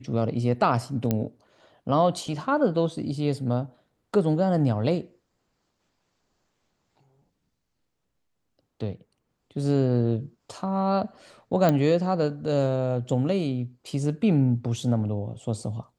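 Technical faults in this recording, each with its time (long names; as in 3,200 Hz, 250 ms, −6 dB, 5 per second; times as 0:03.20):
0:01.11: click −11 dBFS
0:11.69: click −10 dBFS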